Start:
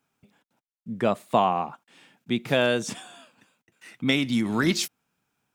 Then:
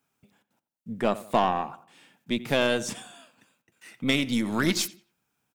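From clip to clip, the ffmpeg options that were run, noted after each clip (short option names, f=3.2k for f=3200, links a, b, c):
-filter_complex "[0:a]highshelf=f=7.7k:g=6,asplit=2[a][b];[b]adelay=89,lowpass=f=2.5k:p=1,volume=-16dB,asplit=2[c][d];[d]adelay=89,lowpass=f=2.5k:p=1,volume=0.39,asplit=2[e][f];[f]adelay=89,lowpass=f=2.5k:p=1,volume=0.39[g];[a][c][e][g]amix=inputs=4:normalize=0,aeval=exprs='0.473*(cos(1*acos(clip(val(0)/0.473,-1,1)))-cos(1*PI/2))+0.0299*(cos(6*acos(clip(val(0)/0.473,-1,1)))-cos(6*PI/2))':c=same,volume=-2dB"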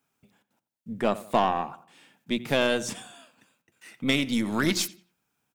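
-af "bandreject=f=60:t=h:w=6,bandreject=f=120:t=h:w=6,bandreject=f=180:t=h:w=6"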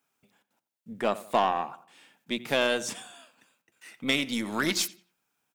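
-af "lowshelf=f=230:g=-11"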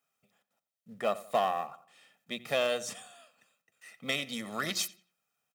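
-filter_complex "[0:a]highpass=110,aecho=1:1:1.6:0.63,asplit=2[a][b];[b]acrusher=bits=4:mode=log:mix=0:aa=0.000001,volume=-7dB[c];[a][c]amix=inputs=2:normalize=0,volume=-9dB"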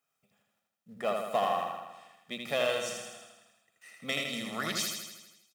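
-af "aecho=1:1:80|160|240|320|400|480|560|640|720:0.631|0.379|0.227|0.136|0.0818|0.0491|0.0294|0.0177|0.0106,volume=-1.5dB"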